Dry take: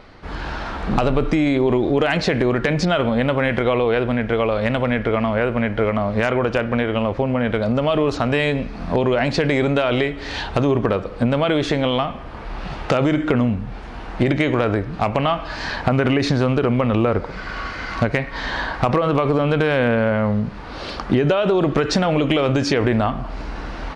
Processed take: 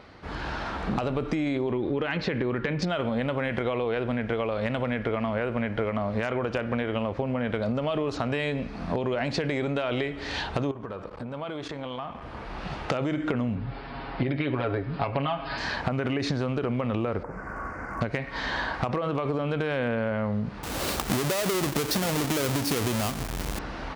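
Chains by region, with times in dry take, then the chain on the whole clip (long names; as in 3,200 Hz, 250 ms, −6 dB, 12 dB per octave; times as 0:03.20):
0:01.71–0:02.82: low-pass filter 3,700 Hz + parametric band 680 Hz −12.5 dB 0.21 octaves
0:10.71–0:12.22: parametric band 1,000 Hz +6 dB 0.86 octaves + downward compressor 5 to 1, threshold −27 dBFS + saturating transformer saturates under 370 Hz
0:13.55–0:15.58: Butterworth low-pass 5,100 Hz 96 dB per octave + comb filter 7.3 ms, depth 77%
0:17.23–0:18.01: gain into a clipping stage and back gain 20 dB + Butterworth band-reject 3,600 Hz, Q 0.52 + highs frequency-modulated by the lows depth 0.14 ms
0:20.63–0:23.59: each half-wave held at its own peak + high-shelf EQ 4,200 Hz +7 dB
whole clip: high-pass filter 54 Hz; downward compressor, threshold −20 dBFS; level −4 dB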